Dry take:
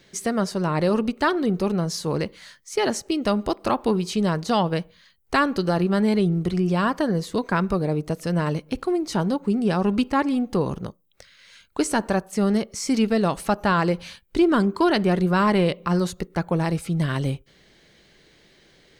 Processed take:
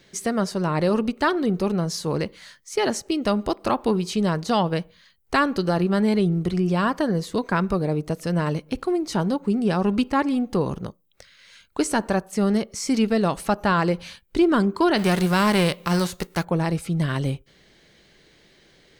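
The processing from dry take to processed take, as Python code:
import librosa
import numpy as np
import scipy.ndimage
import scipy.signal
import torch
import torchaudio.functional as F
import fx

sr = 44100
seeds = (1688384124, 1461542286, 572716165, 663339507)

y = fx.envelope_flatten(x, sr, power=0.6, at=(14.97, 16.43), fade=0.02)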